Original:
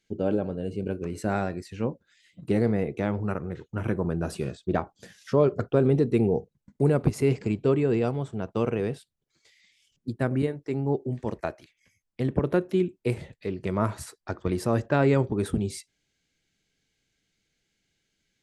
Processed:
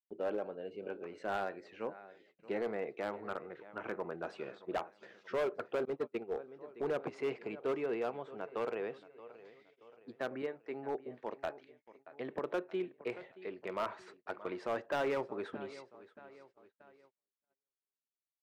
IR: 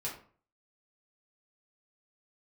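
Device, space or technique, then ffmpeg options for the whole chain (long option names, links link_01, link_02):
walkie-talkie: -filter_complex "[0:a]highpass=550,lowpass=2500,lowpass=8000,aecho=1:1:626|1252|1878|2504:0.126|0.0592|0.0278|0.0131,asoftclip=type=hard:threshold=-25dB,agate=range=-34dB:threshold=-58dB:ratio=16:detection=peak,asettb=1/sr,asplit=3[link_01][link_02][link_03];[link_01]atrim=end=5.854[link_04];[link_02]atrim=start=5.85:end=6.39,asetpts=PTS-STARTPTS,afade=type=in:duration=0.004:curve=qsin,afade=type=out:start_time=0.536:duration=0.004:curve=qsin,agate=range=-31dB:threshold=-30dB:ratio=16:detection=peak[link_05];[link_03]atrim=start=6.386[link_06];[link_04][link_05]acrossfade=duration=0.004:curve1=hsin:curve2=qsin[link_07];[link_07][link_06]acrossfade=duration=0.004:curve1=qsin:curve2=hsin,volume=-4dB"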